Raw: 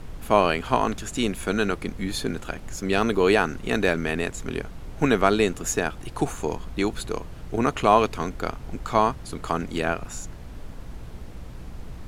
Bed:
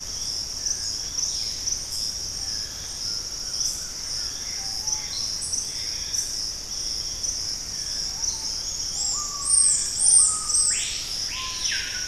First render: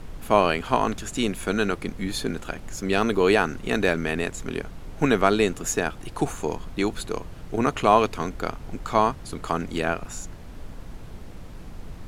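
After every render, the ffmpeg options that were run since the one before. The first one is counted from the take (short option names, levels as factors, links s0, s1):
-af "bandreject=f=60:t=h:w=4,bandreject=f=120:t=h:w=4"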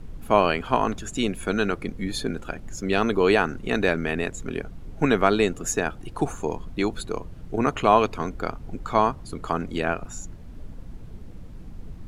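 -af "afftdn=nr=9:nf=-40"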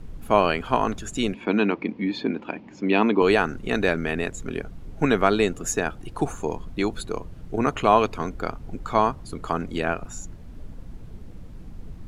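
-filter_complex "[0:a]asettb=1/sr,asplit=3[s0][s1][s2];[s0]atrim=end=1.344[s3];[s1]atrim=start=1.34:end=3.22,asetpts=PTS-STARTPTS,afade=t=in:d=0.004:c=qsin,afade=t=out:st=1.876:d=0.004:c=qsin,highpass=210,equalizer=f=210:t=q:w=4:g=7,equalizer=f=300:t=q:w=4:g=8,equalizer=f=940:t=q:w=4:g=9,equalizer=f=1400:t=q:w=4:g=-6,equalizer=f=2400:t=q:w=4:g=6,equalizer=f=3800:t=q:w=4:g=-3,lowpass=f=4200:w=0.5412,lowpass=f=4200:w=1.3066[s4];[s2]atrim=start=3.216[s5];[s3][s4]acrossfade=d=0.004:c1=hsin:c2=qsin[s6];[s6][s5]acrossfade=d=0.004:c1=qsin:c2=hsin"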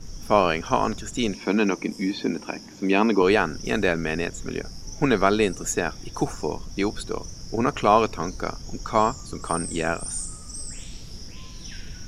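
-filter_complex "[1:a]volume=0.15[s0];[0:a][s0]amix=inputs=2:normalize=0"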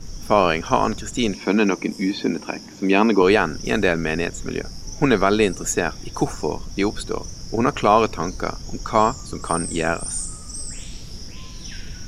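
-af "volume=1.5,alimiter=limit=0.794:level=0:latency=1"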